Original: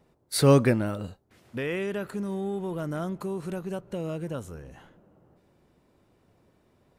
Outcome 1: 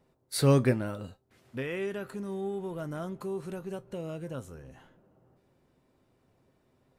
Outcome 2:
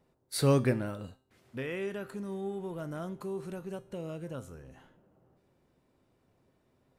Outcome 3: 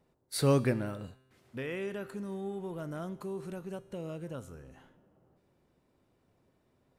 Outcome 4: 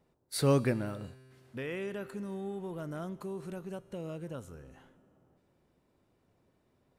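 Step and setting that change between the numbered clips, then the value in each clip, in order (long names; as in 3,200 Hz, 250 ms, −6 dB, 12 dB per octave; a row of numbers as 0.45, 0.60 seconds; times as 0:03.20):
tuned comb filter, decay: 0.15, 0.45, 0.99, 2.2 seconds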